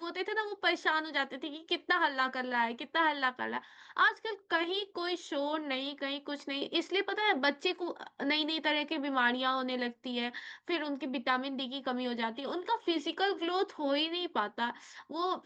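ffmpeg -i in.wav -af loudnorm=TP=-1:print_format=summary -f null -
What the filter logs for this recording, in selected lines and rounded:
Input Integrated:    -32.7 LUFS
Input True Peak:     -15.1 dBTP
Input LRA:             1.8 LU
Input Threshold:     -42.8 LUFS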